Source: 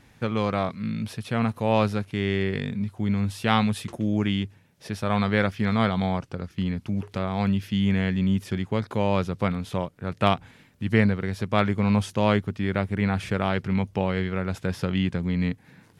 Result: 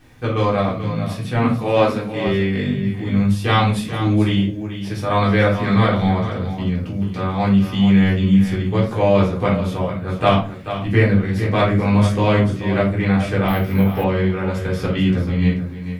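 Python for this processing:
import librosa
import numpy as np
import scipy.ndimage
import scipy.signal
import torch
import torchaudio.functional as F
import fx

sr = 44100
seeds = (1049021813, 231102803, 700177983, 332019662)

p1 = fx.highpass(x, sr, hz=140.0, slope=24, at=(1.44, 2.27))
p2 = fx.level_steps(p1, sr, step_db=12)
p3 = p1 + F.gain(torch.from_numpy(p2), -2.5).numpy()
p4 = fx.quant_dither(p3, sr, seeds[0], bits=12, dither='triangular')
p5 = p4 + fx.echo_single(p4, sr, ms=437, db=-10.5, dry=0)
p6 = fx.room_shoebox(p5, sr, seeds[1], volume_m3=220.0, walls='furnished', distance_m=3.7)
p7 = fx.resample_bad(p6, sr, factor=3, down='filtered', up='hold', at=(13.48, 14.04))
y = F.gain(torch.from_numpy(p7), -5.0).numpy()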